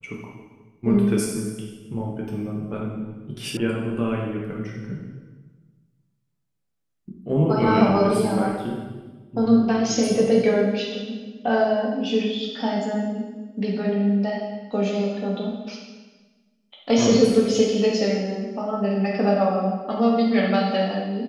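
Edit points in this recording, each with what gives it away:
3.57 s: sound stops dead

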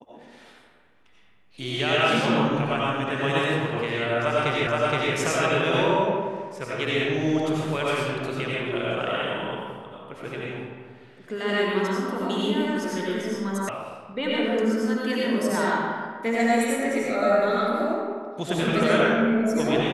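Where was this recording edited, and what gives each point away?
4.67 s: repeat of the last 0.47 s
13.69 s: sound stops dead

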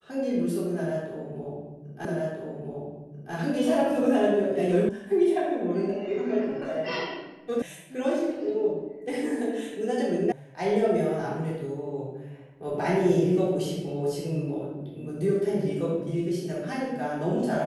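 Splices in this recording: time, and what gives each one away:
2.05 s: repeat of the last 1.29 s
4.89 s: sound stops dead
7.62 s: sound stops dead
10.32 s: sound stops dead

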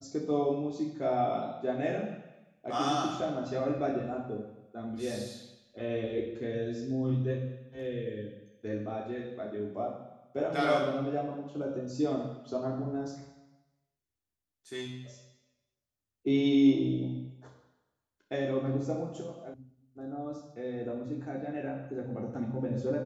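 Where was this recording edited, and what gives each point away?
19.54 s: sound stops dead

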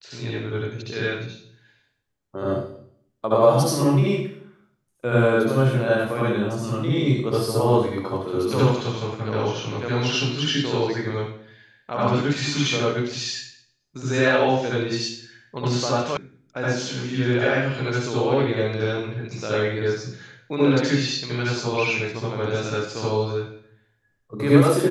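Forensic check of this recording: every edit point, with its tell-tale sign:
16.17 s: sound stops dead

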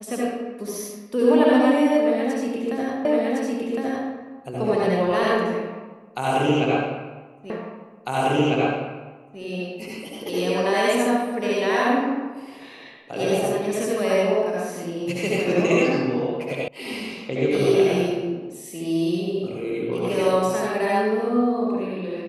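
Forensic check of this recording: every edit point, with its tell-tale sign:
3.05 s: repeat of the last 1.06 s
7.50 s: repeat of the last 1.9 s
16.68 s: sound stops dead

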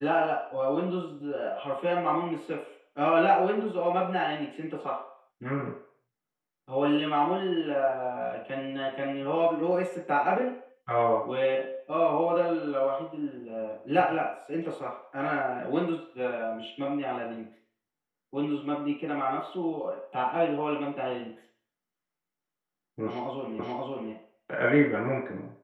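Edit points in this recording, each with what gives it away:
23.59 s: repeat of the last 0.53 s

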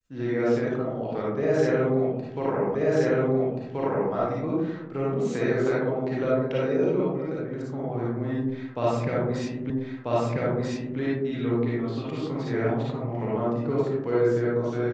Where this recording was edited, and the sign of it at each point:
2.75 s: repeat of the last 1.38 s
9.70 s: repeat of the last 1.29 s

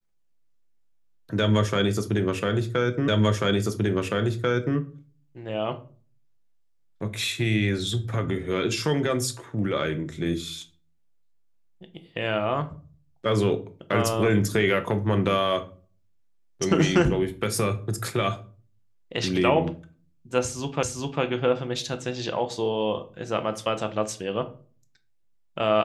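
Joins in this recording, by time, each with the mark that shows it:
3.08 s: repeat of the last 1.69 s
20.83 s: repeat of the last 0.4 s

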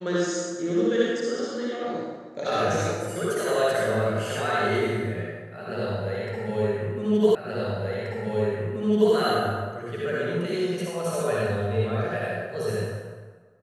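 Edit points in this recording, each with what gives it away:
7.35 s: repeat of the last 1.78 s

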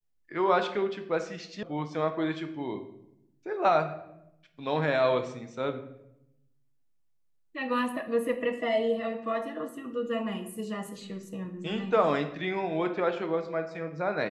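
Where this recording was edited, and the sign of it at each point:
1.63 s: sound stops dead

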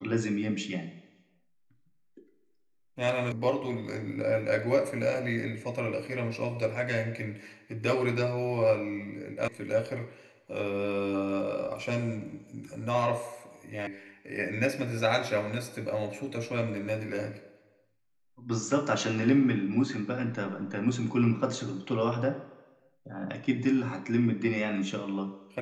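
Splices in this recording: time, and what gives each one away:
3.32 s: sound stops dead
9.48 s: sound stops dead
13.87 s: sound stops dead

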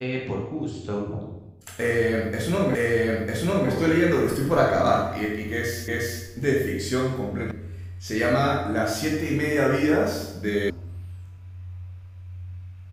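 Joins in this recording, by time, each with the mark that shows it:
2.75 s: repeat of the last 0.95 s
5.88 s: repeat of the last 0.36 s
7.51 s: sound stops dead
10.70 s: sound stops dead

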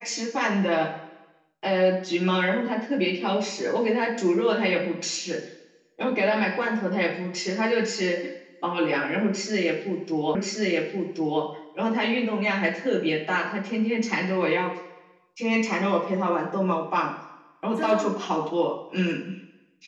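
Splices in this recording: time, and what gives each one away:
10.35 s: repeat of the last 1.08 s

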